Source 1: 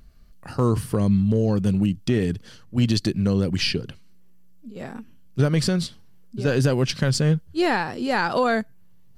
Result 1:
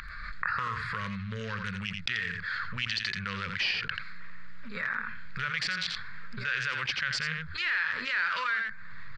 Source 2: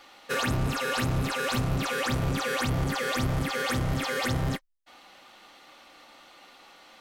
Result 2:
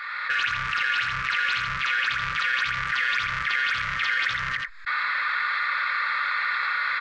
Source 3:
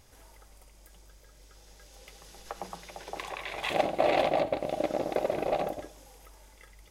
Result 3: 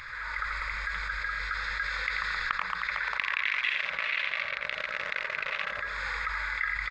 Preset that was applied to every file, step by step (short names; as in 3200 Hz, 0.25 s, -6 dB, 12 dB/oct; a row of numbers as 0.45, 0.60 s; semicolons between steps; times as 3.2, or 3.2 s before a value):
Wiener smoothing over 15 samples; recorder AGC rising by 71 dB/s; inverse Chebyshev high-pass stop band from 810 Hz, stop band 40 dB; in parallel at -6.5 dB: hard clip -24 dBFS; on the sum: tape spacing loss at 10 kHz 41 dB; on a send: echo 85 ms -10 dB; on the sum: fast leveller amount 70%; normalise peaks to -12 dBFS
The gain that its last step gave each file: +5.0, +10.0, +5.5 dB